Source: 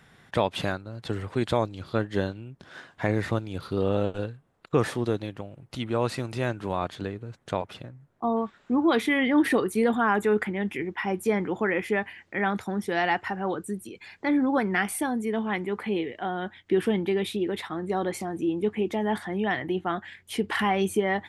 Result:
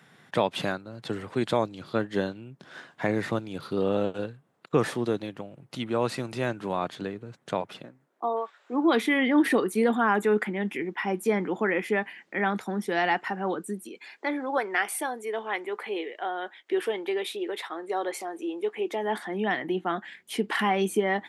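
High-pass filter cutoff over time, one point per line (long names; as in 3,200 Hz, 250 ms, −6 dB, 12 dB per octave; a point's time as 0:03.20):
high-pass filter 24 dB per octave
0:07.66 130 Hz
0:08.58 560 Hz
0:08.92 170 Hz
0:13.64 170 Hz
0:14.38 380 Hz
0:18.72 380 Hz
0:19.52 180 Hz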